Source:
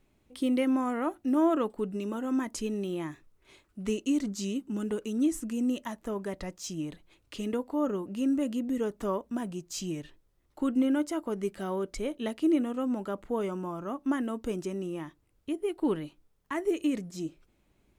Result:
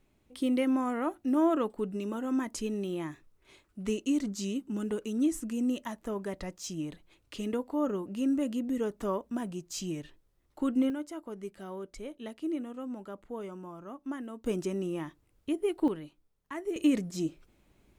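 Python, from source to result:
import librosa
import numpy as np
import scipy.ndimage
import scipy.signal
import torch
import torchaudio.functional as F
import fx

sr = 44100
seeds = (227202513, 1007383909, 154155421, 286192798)

y = fx.gain(x, sr, db=fx.steps((0.0, -1.0), (10.9, -8.5), (14.46, 1.5), (15.88, -6.0), (16.76, 3.5)))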